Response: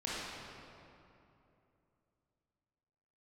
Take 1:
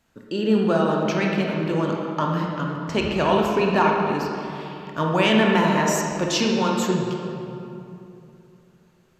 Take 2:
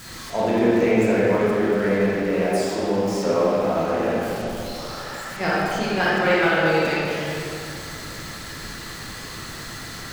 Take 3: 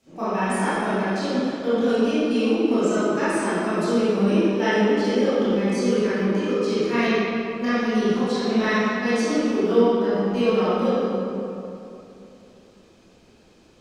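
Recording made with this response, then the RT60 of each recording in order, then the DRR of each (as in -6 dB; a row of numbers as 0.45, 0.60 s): 2; 2.9, 2.9, 2.9 s; -1.0, -8.5, -14.0 dB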